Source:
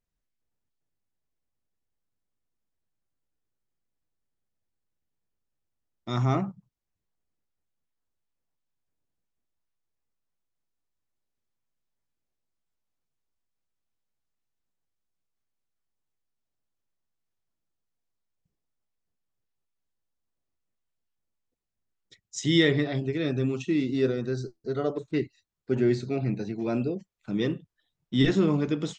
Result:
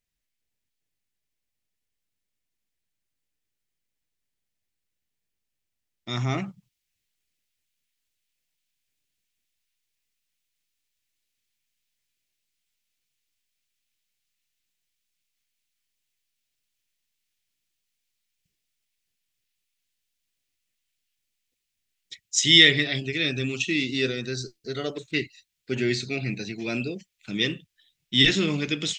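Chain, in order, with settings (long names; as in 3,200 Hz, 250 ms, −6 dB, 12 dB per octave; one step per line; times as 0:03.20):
high shelf with overshoot 1,600 Hz +8 dB, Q 1.5, from 0:06.38 +14 dB
level −2 dB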